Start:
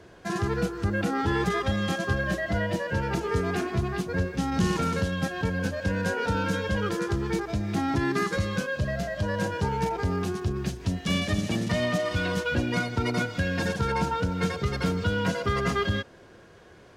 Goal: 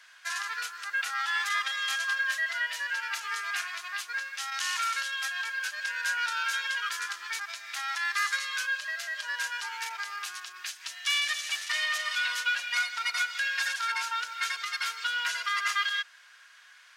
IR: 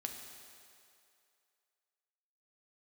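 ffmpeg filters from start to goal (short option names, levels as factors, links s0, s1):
-af "highpass=f=1400:w=0.5412,highpass=f=1400:w=1.3066,volume=1.78"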